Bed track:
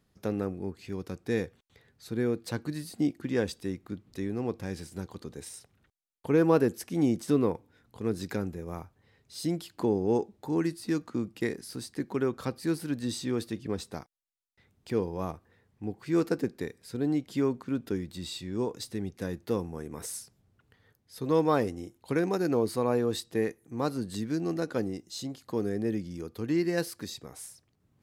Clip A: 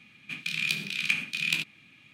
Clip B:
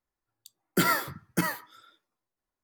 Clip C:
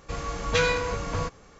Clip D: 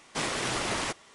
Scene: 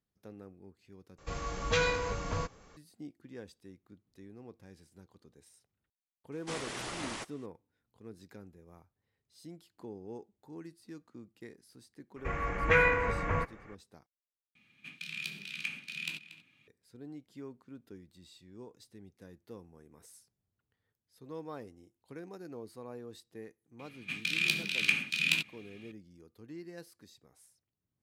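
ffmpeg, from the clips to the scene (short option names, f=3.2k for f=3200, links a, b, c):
-filter_complex "[3:a]asplit=2[a][b];[1:a]asplit=2[c][d];[0:a]volume=-18.5dB[e];[b]highshelf=f=3k:t=q:w=3:g=-13[f];[c]asplit=2[g][h];[h]adelay=233.2,volume=-14dB,highshelf=f=4k:g=-5.25[i];[g][i]amix=inputs=2:normalize=0[j];[e]asplit=3[k][l][m];[k]atrim=end=1.184[n];[a]atrim=end=1.59,asetpts=PTS-STARTPTS,volume=-5.5dB[o];[l]atrim=start=2.766:end=14.554[p];[j]atrim=end=2.13,asetpts=PTS-STARTPTS,volume=-11dB[q];[m]atrim=start=16.676[r];[4:a]atrim=end=1.14,asetpts=PTS-STARTPTS,volume=-9.5dB,afade=t=in:d=0.004:c=hsin,afade=t=out:st=1.136:d=0.004:c=hsin,adelay=6320[s];[f]atrim=end=1.59,asetpts=PTS-STARTPTS,volume=-3dB,afade=t=in:d=0.004:c=hsin,afade=t=out:st=1.586:d=0.004:c=hsin,adelay=12160[t];[d]atrim=end=2.13,asetpts=PTS-STARTPTS,volume=-1dB,afade=t=in:d=0.004:c=hsin,afade=t=out:st=2.126:d=0.004:c=hsin,adelay=23790[u];[n][o]acrossfade=d=0.004:c1=hsin:c2=hsin[v];[v][p]acrossfade=d=0.004:c1=hsin:c2=hsin[w];[w][q]acrossfade=d=0.004:c1=hsin:c2=hsin[x];[x][r]acrossfade=d=0.004:c1=hsin:c2=hsin[y];[y][s][t][u]amix=inputs=4:normalize=0"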